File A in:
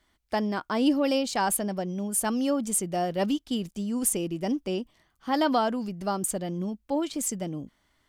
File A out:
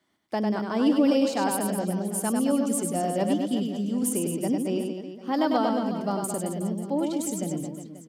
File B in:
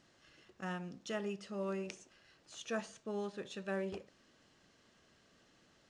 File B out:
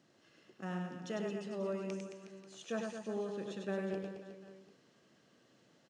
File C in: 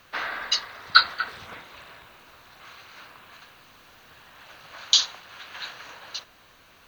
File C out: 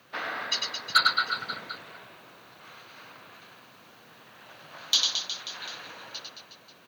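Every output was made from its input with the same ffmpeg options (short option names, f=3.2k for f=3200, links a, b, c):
-filter_complex "[0:a]highpass=f=120:w=0.5412,highpass=f=120:w=1.3066,acrossover=split=680[a][b];[a]acontrast=41[c];[c][b]amix=inputs=2:normalize=0,aecho=1:1:100|220|364|536.8|744.2:0.631|0.398|0.251|0.158|0.1,asoftclip=type=hard:threshold=-7.5dB,volume=-4.5dB"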